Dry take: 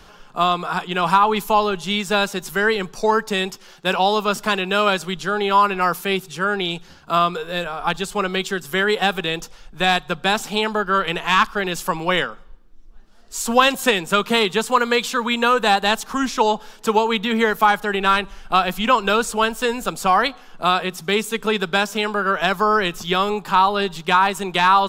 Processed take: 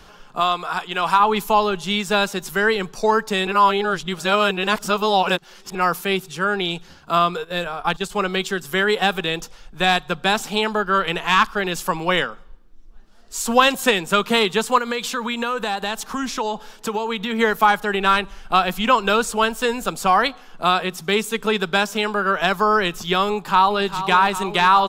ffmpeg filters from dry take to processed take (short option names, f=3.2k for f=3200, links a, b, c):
-filter_complex "[0:a]asettb=1/sr,asplit=3[a][b][c];[a]atrim=end=0.404[d];[b]atrim=start=0.4:end=1.2,asetpts=PTS-STARTPTS,afade=t=in:d=0.004:c=qsin,afade=t=out:st=0.796:d=0.004:c=qsin,equalizer=f=150:w=0.41:g=-8.5[e];[c]atrim=start=1.196[f];[d][e]acrossfade=d=0.004:c1=hsin:c2=qsin[g];[g][f]acrossfade=d=0.004:c1=qsin:c2=hsin,asplit=3[h][i][j];[h]afade=t=out:st=7.43:d=0.02[k];[i]agate=range=-12dB:threshold=-30dB:ratio=16:release=100:detection=peak,afade=t=in:st=7.43:d=0.02,afade=t=out:st=8.09:d=0.02[l];[j]afade=t=in:st=8.09:d=0.02[m];[k][l][m]amix=inputs=3:normalize=0,asplit=3[n][o][p];[n]afade=t=out:st=14.78:d=0.02[q];[o]acompressor=threshold=-21dB:ratio=3:attack=3.2:release=140:knee=1:detection=peak,afade=t=in:st=14.78:d=0.02,afade=t=out:st=17.38:d=0.02[r];[p]afade=t=in:st=17.38:d=0.02[s];[q][r][s]amix=inputs=3:normalize=0,asplit=2[t][u];[u]afade=t=in:st=23.3:d=0.01,afade=t=out:st=24.07:d=0.01,aecho=0:1:400|800|1200|1600|2000|2400|2800|3200|3600|4000|4400|4800:0.266073|0.199554|0.149666|0.112249|0.084187|0.0631403|0.0473552|0.0355164|0.0266373|0.019978|0.0149835|0.0112376[v];[t][v]amix=inputs=2:normalize=0,asplit=3[w][x][y];[w]atrim=end=3.472[z];[x]atrim=start=3.468:end=5.752,asetpts=PTS-STARTPTS,areverse[aa];[y]atrim=start=5.748[ab];[z][aa]acrossfade=d=0.004:c1=hsin:c2=hsin[ac];[ac][ab]acrossfade=d=0.004:c1=hsin:c2=hsin"